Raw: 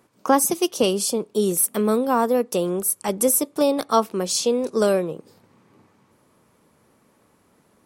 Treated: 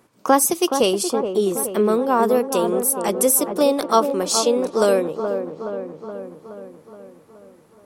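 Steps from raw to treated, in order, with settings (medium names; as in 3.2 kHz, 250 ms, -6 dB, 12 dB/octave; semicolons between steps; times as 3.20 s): 1.03–2.23 s: treble shelf 5 kHz -9.5 dB; feedback echo behind a low-pass 422 ms, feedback 58%, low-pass 1.4 kHz, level -7 dB; dynamic bell 160 Hz, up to -7 dB, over -39 dBFS, Q 1.4; trim +2.5 dB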